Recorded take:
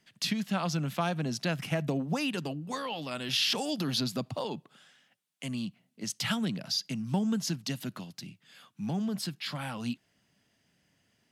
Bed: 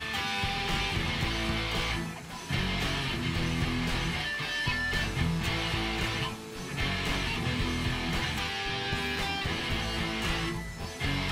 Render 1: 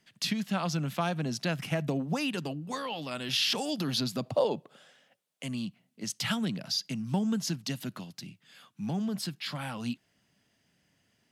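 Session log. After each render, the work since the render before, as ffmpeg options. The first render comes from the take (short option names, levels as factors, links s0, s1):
-filter_complex "[0:a]asettb=1/sr,asplit=3[s0][s1][s2];[s0]atrim=end=4.224[s3];[s1]atrim=start=4.22:end=5.43,asetpts=PTS-STARTPTS,afade=t=in:d=0.004:c=qsin,afade=t=out:st=1.206:d=0.004:c=qsin,equalizer=f=540:w=1.5:g=11.5[s4];[s2]atrim=start=5.426[s5];[s3][s4]acrossfade=d=0.004:c1=hsin:c2=qsin[s6];[s6][s5]acrossfade=d=0.004:c1=qsin:c2=hsin"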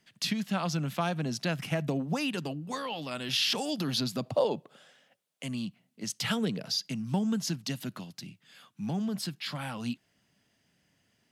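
-filter_complex "[0:a]asettb=1/sr,asplit=3[s0][s1][s2];[s0]atrim=end=6.244[s3];[s1]atrim=start=6.24:end=6.78,asetpts=PTS-STARTPTS,afade=t=in:d=0.004:c=qsin,afade=t=out:st=0.536:d=0.004:c=qsin,equalizer=f=450:w=4.1:g=12[s4];[s2]atrim=start=6.776[s5];[s3][s4]acrossfade=d=0.004:c1=hsin:c2=qsin[s6];[s6][s5]acrossfade=d=0.004:c1=qsin:c2=hsin"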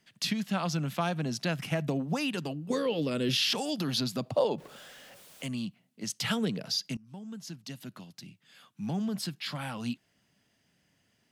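-filter_complex "[0:a]asettb=1/sr,asplit=3[s0][s1][s2];[s0]atrim=end=2.704[s3];[s1]atrim=start=2.7:end=3.38,asetpts=PTS-STARTPTS,afade=t=in:d=0.004:c=qsin,afade=t=out:st=0.676:d=0.004:c=qsin,lowshelf=f=600:t=q:w=3:g=7.5[s4];[s2]atrim=start=3.376[s5];[s3][s4]acrossfade=d=0.004:c1=hsin:c2=qsin[s6];[s6][s5]acrossfade=d=0.004:c1=qsin:c2=hsin,asettb=1/sr,asplit=3[s7][s8][s9];[s7]atrim=end=4.584[s10];[s8]atrim=start=4.58:end=5.47,asetpts=PTS-STARTPTS,afade=t=in:d=0.004:c=qsin,afade=t=out:st=0.886:d=0.004:c=qsin,aeval=exprs='val(0)+0.5*0.00422*sgn(val(0))':c=same[s11];[s9]atrim=start=5.466[s12];[s10][s11]acrossfade=d=0.004:c1=hsin:c2=qsin[s13];[s13][s12]acrossfade=d=0.004:c1=qsin:c2=hsin,asplit=2[s14][s15];[s14]atrim=end=6.97,asetpts=PTS-STARTPTS,afade=t=out:st=6.966:d=0.004:c=hsin:silence=0.0707946[s16];[s15]atrim=start=6.97,asetpts=PTS-STARTPTS,afade=t=in:d=2.01:silence=0.0707946[s17];[s16][s17]concat=n=2:v=0:a=1"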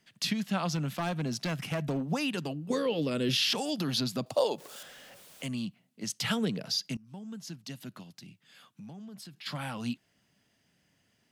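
-filter_complex "[0:a]asettb=1/sr,asplit=3[s0][s1][s2];[s0]atrim=end=0.754[s3];[s1]atrim=start=0.75:end=2.01,asetpts=PTS-STARTPTS,afade=t=in:d=0.004:c=qsin,afade=t=out:st=1.256:d=0.004:c=qsin,asoftclip=type=hard:threshold=0.0447[s4];[s2]atrim=start=2.006[s5];[s3][s4]acrossfade=d=0.004:c1=hsin:c2=qsin[s6];[s6][s5]acrossfade=d=0.004:c1=qsin:c2=hsin,asettb=1/sr,asplit=3[s7][s8][s9];[s7]atrim=end=4.264[s10];[s8]atrim=start=4.26:end=4.83,asetpts=PTS-STARTPTS,afade=t=in:d=0.004:c=qsin,afade=t=out:st=0.566:d=0.004:c=qsin,bass=f=250:g=-11,treble=f=4000:g=11[s11];[s9]atrim=start=4.826[s12];[s10][s11]acrossfade=d=0.004:c1=hsin:c2=qsin[s13];[s13][s12]acrossfade=d=0.004:c1=qsin:c2=hsin,asplit=3[s14][s15][s16];[s14]afade=t=out:st=8.02:d=0.02[s17];[s15]acompressor=threshold=0.00631:ratio=6:attack=3.2:release=140:knee=1:detection=peak,afade=t=in:st=8.02:d=0.02,afade=t=out:st=9.45:d=0.02[s18];[s16]afade=t=in:st=9.45:d=0.02[s19];[s17][s18][s19]amix=inputs=3:normalize=0"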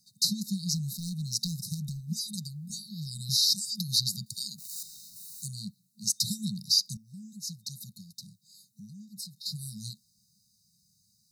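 -af "afftfilt=real='re*(1-between(b*sr/4096,220,3700))':imag='im*(1-between(b*sr/4096,220,3700))':win_size=4096:overlap=0.75,highshelf=f=3500:g=11.5"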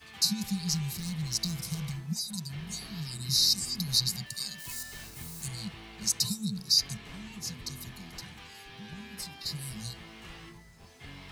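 -filter_complex "[1:a]volume=0.15[s0];[0:a][s0]amix=inputs=2:normalize=0"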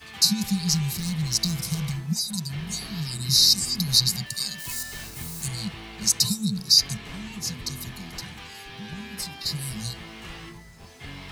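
-af "volume=2.24"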